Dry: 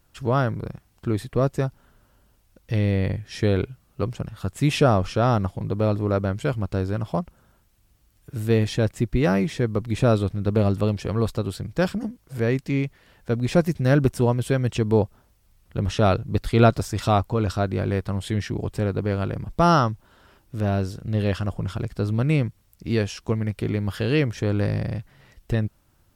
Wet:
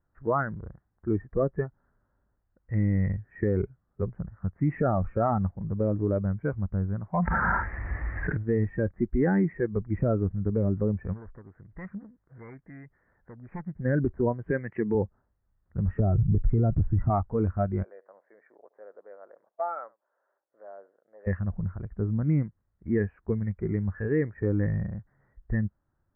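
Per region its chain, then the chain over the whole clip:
7.13–8.37 s: high-pass 50 Hz + overdrive pedal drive 10 dB, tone 3.3 kHz, clips at -13 dBFS + level flattener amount 100%
11.13–13.76 s: self-modulated delay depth 0.66 ms + compression 2:1, threshold -36 dBFS + treble shelf 2.1 kHz +6 dB
14.51–14.95 s: high-pass 120 Hz + peaking EQ 2.5 kHz +8.5 dB 0.97 oct
16.00–17.10 s: compression 2.5:1, threshold -19 dBFS + tilt EQ -3.5 dB/octave
17.83–21.27 s: hard clipper -14.5 dBFS + ladder high-pass 490 Hz, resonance 55% + delay 75 ms -22 dB
whole clip: steep low-pass 1.9 kHz 72 dB/octave; spectral noise reduction 13 dB; peak limiter -16 dBFS

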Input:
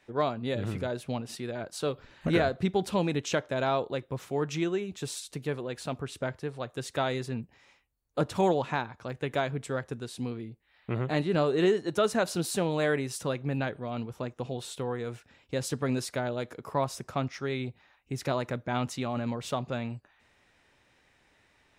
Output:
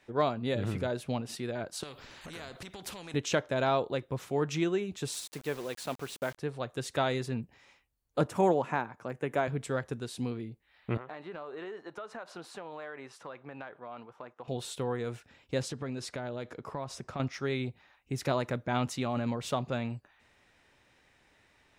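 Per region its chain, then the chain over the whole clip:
1.83–3.14 s: compression 5:1, threshold -34 dBFS + spectrum-flattening compressor 2:1
5.13–6.38 s: high-pass 310 Hz 6 dB/octave + word length cut 8-bit, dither none
8.27–9.48 s: high-pass 150 Hz + peaking EQ 3.9 kHz -12 dB 0.87 oct
10.97–14.48 s: band-pass filter 1.1 kHz, Q 1.2 + compression, threshold -38 dBFS
15.62–17.20 s: distance through air 53 m + compression 4:1, threshold -34 dBFS
whole clip: none

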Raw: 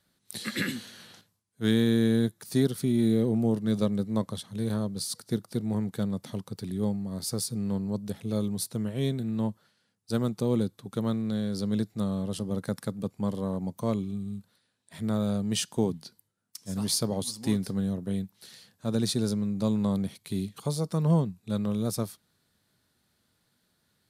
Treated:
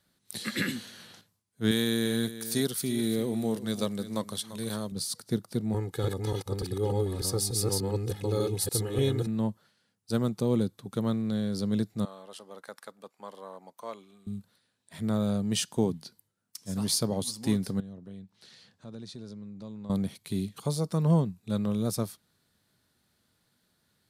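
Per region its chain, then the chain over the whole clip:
1.71–4.92 s: tilt EQ +2.5 dB/octave + delay 343 ms -13.5 dB
5.74–9.27 s: chunks repeated in reverse 295 ms, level 0 dB + comb 2.4 ms, depth 82% + upward compressor, threshold -36 dBFS
12.05–14.27 s: high-pass 830 Hz + treble shelf 2.8 kHz -9 dB
17.80–19.90 s: low-pass 6 kHz + compression 2:1, threshold -52 dBFS
whole clip: none

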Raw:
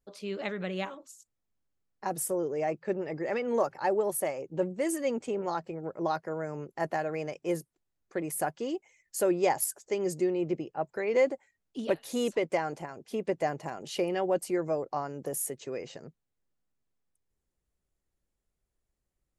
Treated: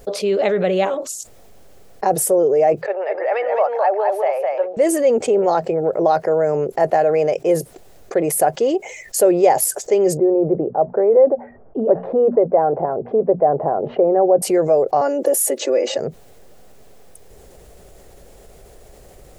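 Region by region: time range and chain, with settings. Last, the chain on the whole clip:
2.86–4.77 s: high-pass 690 Hz 24 dB/octave + distance through air 330 m + delay 209 ms -5 dB
10.17–14.42 s: low-pass 1.2 kHz 24 dB/octave + hum notches 60/120/180/240 Hz
15.01–15.98 s: high-pass 250 Hz 24 dB/octave + comb 3.5 ms, depth 92%
whole clip: high-order bell 550 Hz +10 dB 1.2 oct; level flattener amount 50%; trim +2 dB

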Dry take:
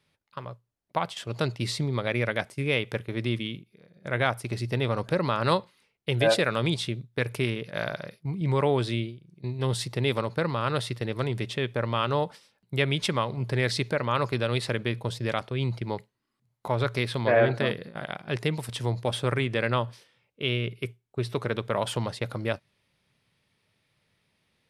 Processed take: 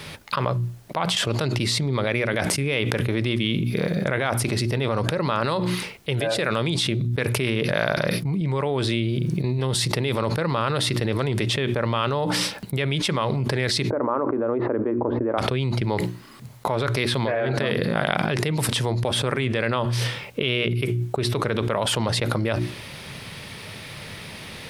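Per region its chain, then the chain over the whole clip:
13.90–15.38 s: low-pass 1.2 kHz 24 dB/octave + resonant low shelf 210 Hz -9 dB, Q 3
whole clip: hum notches 60/120/180/240/300/360 Hz; level flattener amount 100%; trim -5.5 dB

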